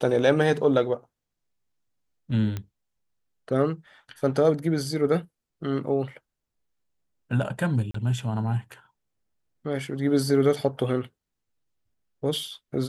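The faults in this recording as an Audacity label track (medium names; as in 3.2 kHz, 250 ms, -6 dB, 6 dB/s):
2.570000	2.570000	pop -18 dBFS
7.910000	7.940000	dropout 34 ms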